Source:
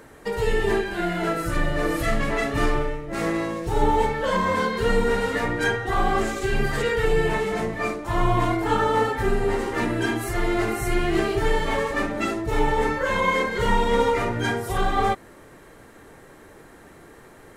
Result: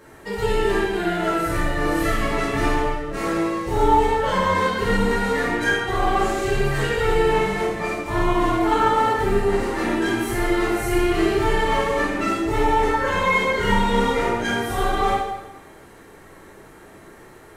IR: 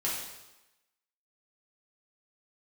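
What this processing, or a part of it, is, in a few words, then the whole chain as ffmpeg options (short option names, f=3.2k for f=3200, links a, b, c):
bathroom: -filter_complex "[1:a]atrim=start_sample=2205[a];[0:a][a]afir=irnorm=-1:irlink=0,volume=-3.5dB"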